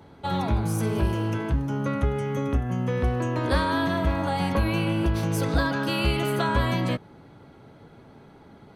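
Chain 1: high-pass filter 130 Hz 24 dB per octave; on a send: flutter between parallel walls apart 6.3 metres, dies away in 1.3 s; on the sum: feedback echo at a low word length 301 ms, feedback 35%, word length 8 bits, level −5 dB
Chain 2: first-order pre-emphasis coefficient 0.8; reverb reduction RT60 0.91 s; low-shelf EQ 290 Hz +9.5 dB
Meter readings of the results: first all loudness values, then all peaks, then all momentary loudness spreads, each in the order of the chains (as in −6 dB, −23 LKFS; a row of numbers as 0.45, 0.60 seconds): −19.5, −35.0 LKFS; −5.0, −18.5 dBFS; 8, 5 LU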